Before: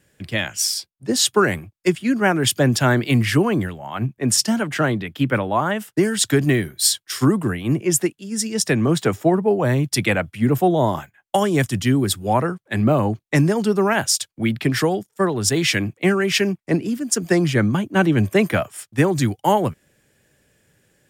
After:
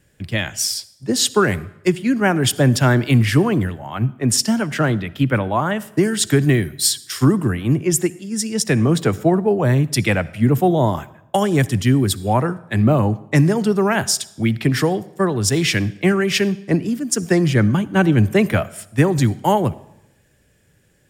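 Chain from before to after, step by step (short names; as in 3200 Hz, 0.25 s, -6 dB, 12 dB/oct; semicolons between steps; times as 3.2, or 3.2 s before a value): low shelf 110 Hz +10 dB; reverb RT60 0.85 s, pre-delay 51 ms, DRR 19.5 dB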